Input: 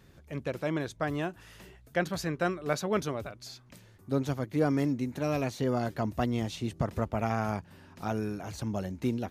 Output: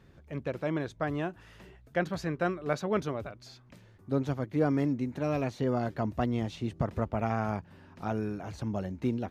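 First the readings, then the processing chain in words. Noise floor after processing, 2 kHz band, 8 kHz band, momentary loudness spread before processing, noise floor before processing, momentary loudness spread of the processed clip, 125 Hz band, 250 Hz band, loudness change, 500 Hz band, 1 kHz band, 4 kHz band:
−57 dBFS, −1.5 dB, can't be measured, 10 LU, −57 dBFS, 9 LU, 0.0 dB, 0.0 dB, −0.5 dB, 0.0 dB, −0.5 dB, −5.0 dB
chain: low-pass filter 2,600 Hz 6 dB per octave

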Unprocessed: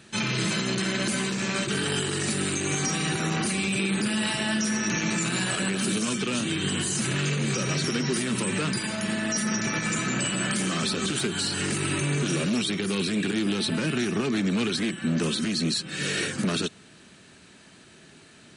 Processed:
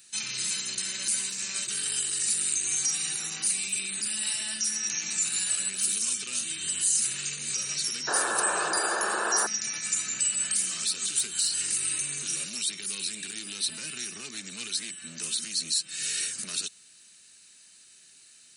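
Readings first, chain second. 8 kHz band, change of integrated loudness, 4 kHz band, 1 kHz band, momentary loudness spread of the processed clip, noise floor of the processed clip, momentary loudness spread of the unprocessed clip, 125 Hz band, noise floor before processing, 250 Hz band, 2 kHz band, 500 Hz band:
+5.5 dB, −1.0 dB, −2.0 dB, −1.5 dB, 7 LU, −55 dBFS, 2 LU, −23.5 dB, −52 dBFS, −21.5 dB, −5.5 dB, −11.0 dB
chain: first-order pre-emphasis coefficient 0.9
sound drawn into the spectrogram noise, 0:08.07–0:09.47, 310–1,800 Hz −28 dBFS
high-shelf EQ 2,200 Hz +10 dB
notch filter 3,300 Hz, Q 11
level −3.5 dB

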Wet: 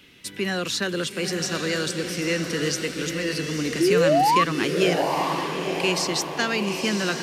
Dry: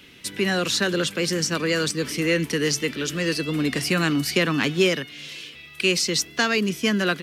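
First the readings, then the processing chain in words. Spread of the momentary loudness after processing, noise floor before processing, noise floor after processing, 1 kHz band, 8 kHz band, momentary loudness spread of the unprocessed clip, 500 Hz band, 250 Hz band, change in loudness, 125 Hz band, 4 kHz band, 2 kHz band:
8 LU, −45 dBFS, −39 dBFS, +8.0 dB, −2.5 dB, 6 LU, +1.5 dB, −1.5 dB, −1.0 dB, −2.0 dB, −2.5 dB, −2.5 dB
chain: sound drawn into the spectrogram rise, 0:03.80–0:04.44, 320–1,200 Hz −15 dBFS
feedback delay with all-pass diffusion 909 ms, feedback 50%, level −5.5 dB
level −3.5 dB

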